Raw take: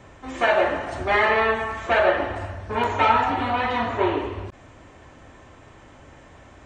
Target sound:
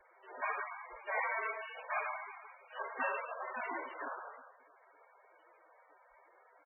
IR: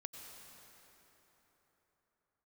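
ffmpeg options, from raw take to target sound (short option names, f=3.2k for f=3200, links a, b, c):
-filter_complex "[0:a]lowpass=f=3.4k:t=q:w=0.5098,lowpass=f=3.4k:t=q:w=0.6013,lowpass=f=3.4k:t=q:w=0.9,lowpass=f=3.4k:t=q:w=2.563,afreqshift=-4000,acrossover=split=3100[a][b];[b]acompressor=threshold=-31dB:ratio=4:attack=1:release=60[c];[a][c]amix=inputs=2:normalize=0,firequalizer=gain_entry='entry(340,0);entry(490,4);entry(2800,-28)':delay=0.05:min_phase=1,acontrast=24,acrusher=bits=10:mix=0:aa=0.000001,bandreject=f=369.4:t=h:w=4,bandreject=f=738.8:t=h:w=4,bandreject=f=1.1082k:t=h:w=4,bandreject=f=1.4776k:t=h:w=4,bandreject=f=1.847k:t=h:w=4,bandreject=f=2.2164k:t=h:w=4,bandreject=f=2.5858k:t=h:w=4,bandreject=f=2.9552k:t=h:w=4,bandreject=f=3.3246k:t=h:w=4,bandreject=f=3.694k:t=h:w=4,bandreject=f=4.0634k:t=h:w=4,bandreject=f=4.4328k:t=h:w=4,bandreject=f=4.8022k:t=h:w=4,bandreject=f=5.1716k:t=h:w=4,bandreject=f=5.541k:t=h:w=4,bandreject=f=5.9104k:t=h:w=4,asplit=2[d][e];[1:a]atrim=start_sample=2205,asetrate=88200,aresample=44100[f];[e][f]afir=irnorm=-1:irlink=0,volume=-1dB[g];[d][g]amix=inputs=2:normalize=0,volume=-3.5dB" -ar 24000 -c:a libmp3lame -b:a 8k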